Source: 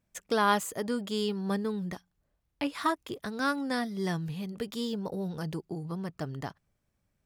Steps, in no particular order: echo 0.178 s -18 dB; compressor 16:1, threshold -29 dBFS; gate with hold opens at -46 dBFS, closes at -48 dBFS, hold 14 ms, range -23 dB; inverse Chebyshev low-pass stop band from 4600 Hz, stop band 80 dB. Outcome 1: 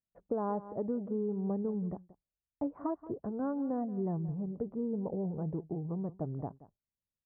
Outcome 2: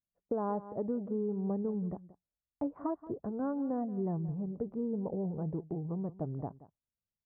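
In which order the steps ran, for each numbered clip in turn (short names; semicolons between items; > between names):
echo > gate with hold > inverse Chebyshev low-pass > compressor; inverse Chebyshev low-pass > gate with hold > echo > compressor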